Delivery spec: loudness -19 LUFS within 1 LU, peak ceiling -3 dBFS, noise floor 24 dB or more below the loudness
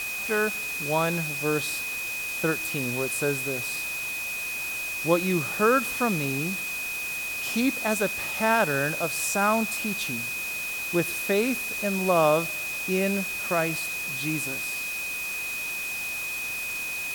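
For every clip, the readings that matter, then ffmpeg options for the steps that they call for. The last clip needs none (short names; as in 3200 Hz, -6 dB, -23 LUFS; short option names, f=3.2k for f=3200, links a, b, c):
steady tone 2500 Hz; tone level -30 dBFS; noise floor -32 dBFS; noise floor target -50 dBFS; loudness -26.0 LUFS; peak -8.0 dBFS; loudness target -19.0 LUFS
-> -af "bandreject=f=2.5k:w=30"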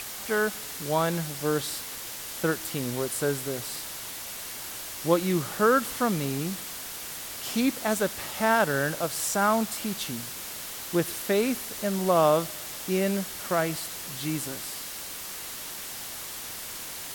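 steady tone none; noise floor -38 dBFS; noise floor target -53 dBFS
-> -af "afftdn=nr=15:nf=-38"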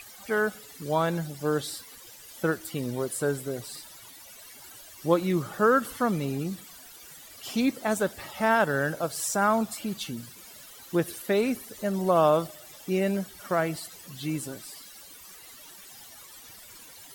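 noise floor -48 dBFS; noise floor target -52 dBFS
-> -af "afftdn=nr=6:nf=-48"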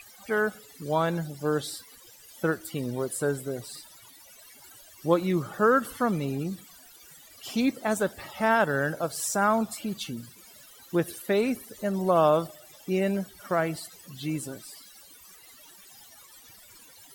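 noise floor -52 dBFS; loudness -28.0 LUFS; peak -9.0 dBFS; loudness target -19.0 LUFS
-> -af "volume=9dB,alimiter=limit=-3dB:level=0:latency=1"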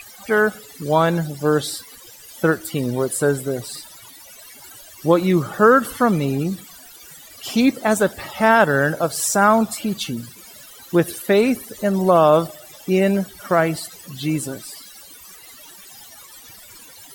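loudness -19.0 LUFS; peak -3.0 dBFS; noise floor -43 dBFS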